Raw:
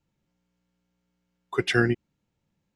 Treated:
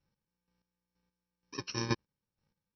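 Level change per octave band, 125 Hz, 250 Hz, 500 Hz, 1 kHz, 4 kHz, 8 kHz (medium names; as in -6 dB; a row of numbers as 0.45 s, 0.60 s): -10.0 dB, -12.0 dB, -15.5 dB, -8.0 dB, -7.5 dB, -1.0 dB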